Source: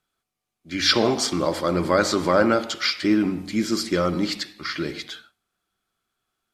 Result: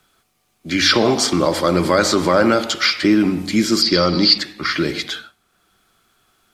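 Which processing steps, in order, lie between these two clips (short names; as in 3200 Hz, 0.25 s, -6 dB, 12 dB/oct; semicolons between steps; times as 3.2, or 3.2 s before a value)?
3.82–4.38 synth low-pass 4700 Hz, resonance Q 14; in parallel at +2 dB: limiter -11 dBFS, peak gain reduction 9.5 dB; on the sum: three-band squash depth 40%; gain -1 dB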